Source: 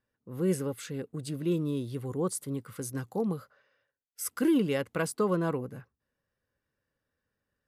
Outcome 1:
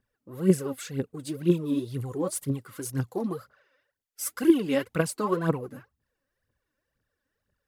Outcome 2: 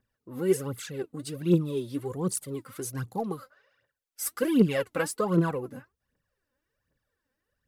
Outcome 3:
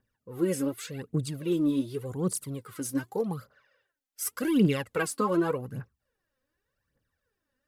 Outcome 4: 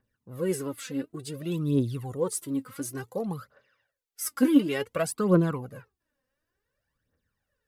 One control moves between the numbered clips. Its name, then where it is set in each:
phaser, rate: 2, 1.3, 0.86, 0.56 Hz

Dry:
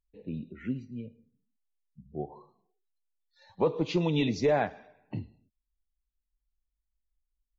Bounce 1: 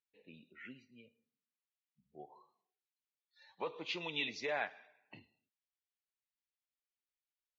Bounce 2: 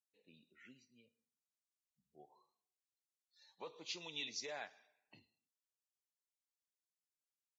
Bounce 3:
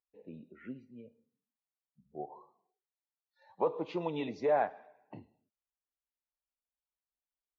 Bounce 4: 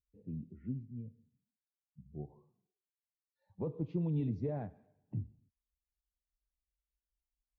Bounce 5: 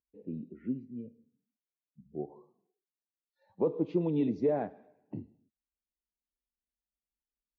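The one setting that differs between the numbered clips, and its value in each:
band-pass, frequency: 2500, 6800, 840, 100, 310 Hz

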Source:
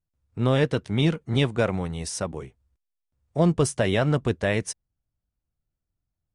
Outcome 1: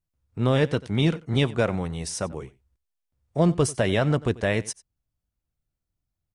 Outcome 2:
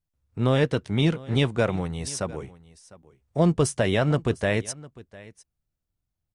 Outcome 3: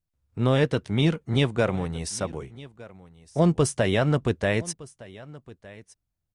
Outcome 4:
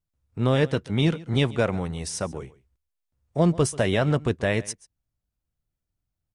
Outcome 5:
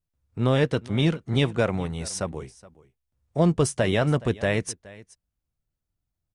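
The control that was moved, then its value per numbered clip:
echo, time: 91, 703, 1212, 136, 421 ms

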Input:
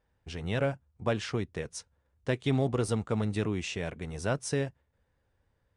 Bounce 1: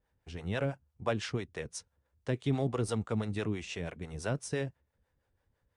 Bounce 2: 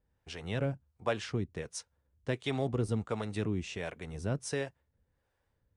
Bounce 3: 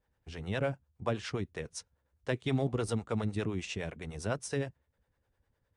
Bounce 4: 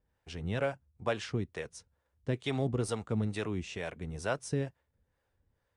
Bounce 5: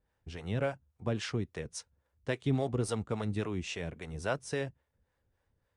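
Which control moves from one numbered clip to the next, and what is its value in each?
harmonic tremolo, rate: 6, 1.4, 9.8, 2.2, 3.6 Hz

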